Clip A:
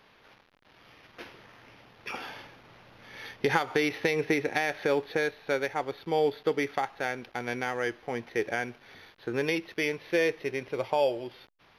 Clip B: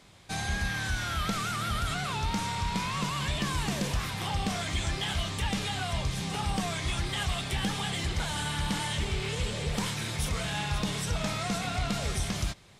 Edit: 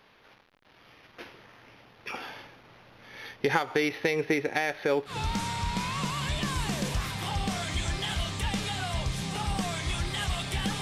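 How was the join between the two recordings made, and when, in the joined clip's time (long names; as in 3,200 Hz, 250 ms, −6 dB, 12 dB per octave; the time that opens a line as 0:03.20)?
clip A
0:05.12: continue with clip B from 0:02.11, crossfade 0.14 s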